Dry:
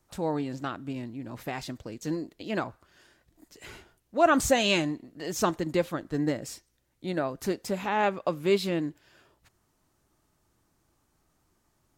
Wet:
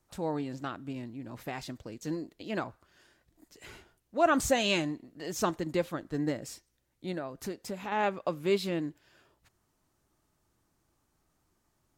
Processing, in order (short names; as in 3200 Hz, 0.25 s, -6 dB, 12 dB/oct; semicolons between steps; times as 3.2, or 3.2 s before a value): 7.14–7.92 compressor 2.5:1, threshold -32 dBFS, peak gain reduction 6.5 dB; gain -3.5 dB